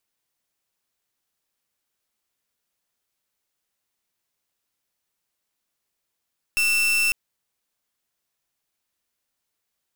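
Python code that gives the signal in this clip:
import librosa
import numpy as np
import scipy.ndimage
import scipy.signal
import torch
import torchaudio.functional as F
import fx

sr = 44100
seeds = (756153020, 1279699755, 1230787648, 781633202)

y = fx.pulse(sr, length_s=0.55, hz=2680.0, level_db=-20.5, duty_pct=39)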